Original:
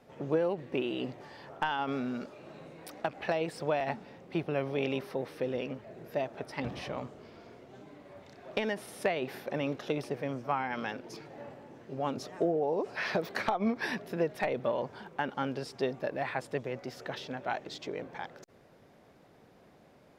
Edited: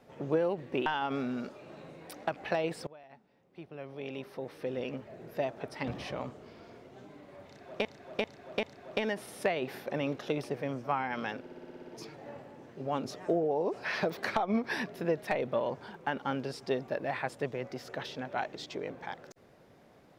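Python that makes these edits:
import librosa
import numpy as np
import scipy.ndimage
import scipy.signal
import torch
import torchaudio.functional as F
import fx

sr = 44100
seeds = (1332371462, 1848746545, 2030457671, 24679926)

y = fx.edit(x, sr, fx.cut(start_s=0.86, length_s=0.77),
    fx.fade_in_from(start_s=3.64, length_s=2.12, curve='qua', floor_db=-23.0),
    fx.repeat(start_s=8.23, length_s=0.39, count=4),
    fx.stutter(start_s=11.0, slice_s=0.06, count=9), tone=tone)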